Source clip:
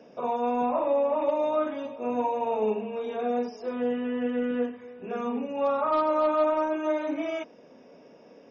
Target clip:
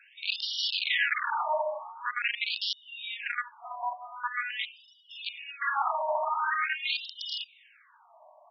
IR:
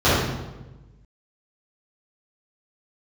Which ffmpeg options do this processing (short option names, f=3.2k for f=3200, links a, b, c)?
-af "crystalizer=i=8:c=0,aeval=exprs='(mod(8.91*val(0)+1,2)-1)/8.91':c=same,afftfilt=real='re*between(b*sr/1024,810*pow(4100/810,0.5+0.5*sin(2*PI*0.45*pts/sr))/1.41,810*pow(4100/810,0.5+0.5*sin(2*PI*0.45*pts/sr))*1.41)':imag='im*between(b*sr/1024,810*pow(4100/810,0.5+0.5*sin(2*PI*0.45*pts/sr))/1.41,810*pow(4100/810,0.5+0.5*sin(2*PI*0.45*pts/sr))*1.41)':win_size=1024:overlap=0.75,volume=2.5dB"